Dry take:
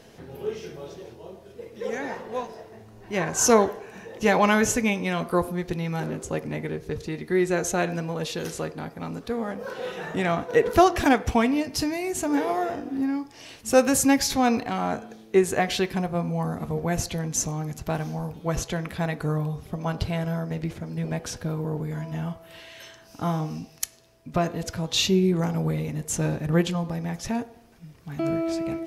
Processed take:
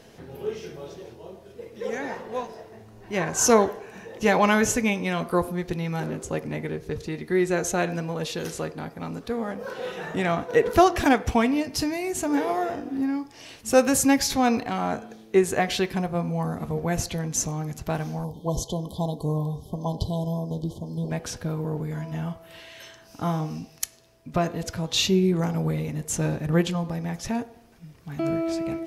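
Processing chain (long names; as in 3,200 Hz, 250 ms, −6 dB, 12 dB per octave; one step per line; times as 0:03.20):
time-frequency box erased 0:18.25–0:21.10, 1,100–3,000 Hz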